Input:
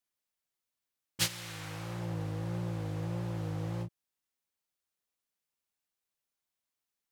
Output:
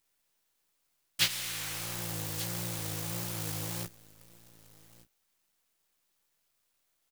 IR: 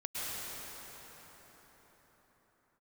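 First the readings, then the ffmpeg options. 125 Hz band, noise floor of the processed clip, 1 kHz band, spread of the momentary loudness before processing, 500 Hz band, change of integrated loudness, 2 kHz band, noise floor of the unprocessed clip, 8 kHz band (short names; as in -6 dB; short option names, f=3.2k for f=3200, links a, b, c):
-4.5 dB, -78 dBFS, +0.5 dB, 9 LU, -2.5 dB, +3.0 dB, +5.5 dB, under -85 dBFS, +6.0 dB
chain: -filter_complex "[0:a]highpass=f=64:w=0.5412,highpass=f=64:w=1.3066,aecho=1:1:1187:0.133,acrossover=split=3600[a][b];[b]acompressor=threshold=-55dB:ratio=4:attack=1:release=60[c];[a][c]amix=inputs=2:normalize=0,highshelf=f=2.7k:g=4,acrusher=bits=5:mode=log:mix=0:aa=0.000001,crystalizer=i=8:c=0,acrusher=bits=7:dc=4:mix=0:aa=0.000001,agate=range=-7dB:threshold=-52dB:ratio=16:detection=peak,volume=-4.5dB"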